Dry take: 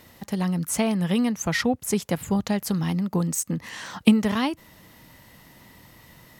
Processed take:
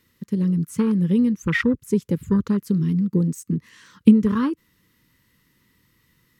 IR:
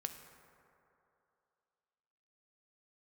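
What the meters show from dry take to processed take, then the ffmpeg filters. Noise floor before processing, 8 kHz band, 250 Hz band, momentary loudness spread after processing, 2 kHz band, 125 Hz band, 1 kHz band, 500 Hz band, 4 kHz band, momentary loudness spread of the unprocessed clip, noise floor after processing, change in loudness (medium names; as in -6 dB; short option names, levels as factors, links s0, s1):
-52 dBFS, -12.0 dB, +4.5 dB, 11 LU, +1.0 dB, +4.5 dB, -5.0 dB, +1.0 dB, no reading, 9 LU, -65 dBFS, +3.5 dB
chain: -af "afwtdn=0.0447,asuperstop=centerf=710:order=4:qfactor=1.2,volume=1.68"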